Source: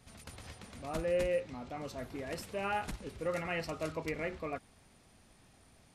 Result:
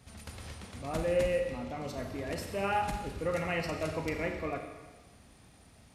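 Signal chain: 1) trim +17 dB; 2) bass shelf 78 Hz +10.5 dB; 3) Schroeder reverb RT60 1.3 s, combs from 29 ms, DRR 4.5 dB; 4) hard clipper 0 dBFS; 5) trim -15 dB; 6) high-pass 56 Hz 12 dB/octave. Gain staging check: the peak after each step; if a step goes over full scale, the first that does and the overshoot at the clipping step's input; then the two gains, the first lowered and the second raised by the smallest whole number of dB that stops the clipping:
-6.0 dBFS, -4.0 dBFS, -2.5 dBFS, -2.5 dBFS, -17.5 dBFS, -18.5 dBFS; nothing clips

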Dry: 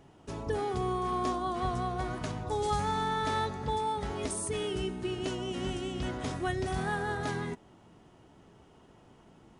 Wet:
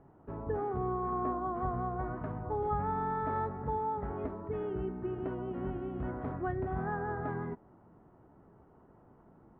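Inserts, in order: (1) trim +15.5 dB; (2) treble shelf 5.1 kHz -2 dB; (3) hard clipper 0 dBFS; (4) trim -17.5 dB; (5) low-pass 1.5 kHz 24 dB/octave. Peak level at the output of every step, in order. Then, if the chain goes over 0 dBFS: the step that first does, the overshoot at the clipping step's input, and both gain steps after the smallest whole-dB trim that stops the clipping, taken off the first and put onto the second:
-3.0 dBFS, -3.0 dBFS, -3.0 dBFS, -20.5 dBFS, -22.0 dBFS; nothing clips

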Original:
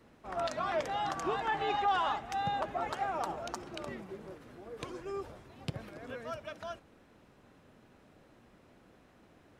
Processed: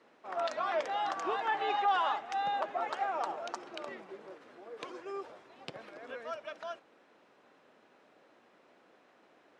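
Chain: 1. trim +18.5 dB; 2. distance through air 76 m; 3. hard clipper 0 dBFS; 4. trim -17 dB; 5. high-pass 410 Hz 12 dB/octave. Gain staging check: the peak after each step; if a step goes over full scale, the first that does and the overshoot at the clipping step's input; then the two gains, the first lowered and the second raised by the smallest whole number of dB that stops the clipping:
-1.5 dBFS, -2.0 dBFS, -2.0 dBFS, -19.0 dBFS, -19.5 dBFS; nothing clips

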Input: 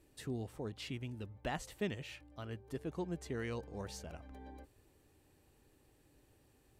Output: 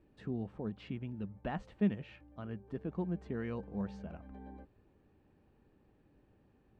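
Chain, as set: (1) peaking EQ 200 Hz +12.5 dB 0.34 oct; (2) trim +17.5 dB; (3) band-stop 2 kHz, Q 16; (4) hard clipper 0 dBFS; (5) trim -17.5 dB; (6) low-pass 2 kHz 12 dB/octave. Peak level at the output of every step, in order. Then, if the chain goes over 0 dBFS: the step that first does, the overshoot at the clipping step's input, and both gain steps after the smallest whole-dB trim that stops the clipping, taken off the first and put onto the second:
-19.0 dBFS, -1.5 dBFS, -1.5 dBFS, -1.5 dBFS, -19.0 dBFS, -19.5 dBFS; nothing clips

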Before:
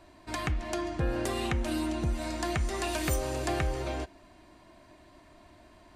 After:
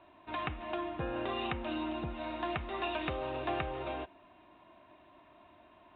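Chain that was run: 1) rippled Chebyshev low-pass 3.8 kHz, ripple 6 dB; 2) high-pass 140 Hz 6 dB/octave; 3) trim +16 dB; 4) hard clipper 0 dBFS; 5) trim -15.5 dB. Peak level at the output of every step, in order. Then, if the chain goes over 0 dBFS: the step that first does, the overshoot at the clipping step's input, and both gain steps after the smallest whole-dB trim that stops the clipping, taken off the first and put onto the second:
-19.0 dBFS, -18.5 dBFS, -2.5 dBFS, -2.5 dBFS, -18.0 dBFS; nothing clips

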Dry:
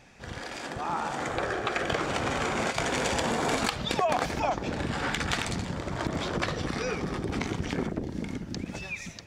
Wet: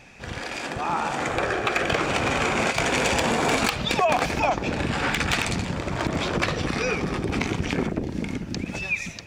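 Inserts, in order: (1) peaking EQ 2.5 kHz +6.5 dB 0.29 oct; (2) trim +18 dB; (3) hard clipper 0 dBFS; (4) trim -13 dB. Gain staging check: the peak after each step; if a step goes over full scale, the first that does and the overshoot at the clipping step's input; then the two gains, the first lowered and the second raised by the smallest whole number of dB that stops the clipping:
-10.5 dBFS, +7.5 dBFS, 0.0 dBFS, -13.0 dBFS; step 2, 7.5 dB; step 2 +10 dB, step 4 -5 dB

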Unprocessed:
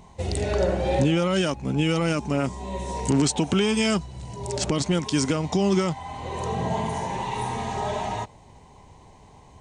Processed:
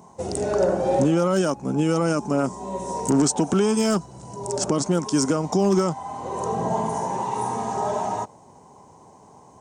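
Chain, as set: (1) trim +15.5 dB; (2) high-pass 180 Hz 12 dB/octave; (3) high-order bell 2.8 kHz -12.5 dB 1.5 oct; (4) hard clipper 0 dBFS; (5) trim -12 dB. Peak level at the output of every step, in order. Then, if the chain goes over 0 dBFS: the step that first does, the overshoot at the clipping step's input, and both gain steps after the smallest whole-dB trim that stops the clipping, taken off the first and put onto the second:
+3.5 dBFS, +5.5 dBFS, +5.0 dBFS, 0.0 dBFS, -12.0 dBFS; step 1, 5.0 dB; step 1 +10.5 dB, step 5 -7 dB

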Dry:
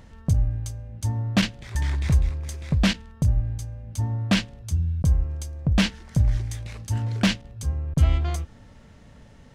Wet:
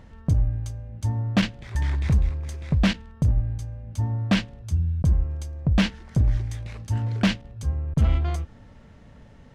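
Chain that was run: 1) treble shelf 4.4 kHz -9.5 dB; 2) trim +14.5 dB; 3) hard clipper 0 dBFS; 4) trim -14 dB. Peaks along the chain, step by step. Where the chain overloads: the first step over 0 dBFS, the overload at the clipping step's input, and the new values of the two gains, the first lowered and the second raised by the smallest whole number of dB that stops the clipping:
-10.0 dBFS, +4.5 dBFS, 0.0 dBFS, -14.0 dBFS; step 2, 4.5 dB; step 2 +9.5 dB, step 4 -9 dB

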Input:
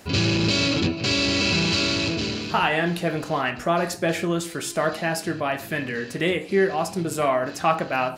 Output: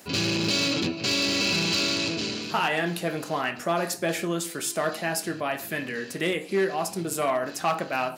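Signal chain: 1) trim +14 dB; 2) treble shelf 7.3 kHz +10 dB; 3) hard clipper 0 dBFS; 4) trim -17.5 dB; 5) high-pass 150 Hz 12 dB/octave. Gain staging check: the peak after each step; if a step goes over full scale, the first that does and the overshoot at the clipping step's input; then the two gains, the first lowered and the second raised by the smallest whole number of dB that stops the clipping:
+7.5 dBFS, +7.5 dBFS, 0.0 dBFS, -17.5 dBFS, -14.0 dBFS; step 1, 7.5 dB; step 1 +6 dB, step 4 -9.5 dB

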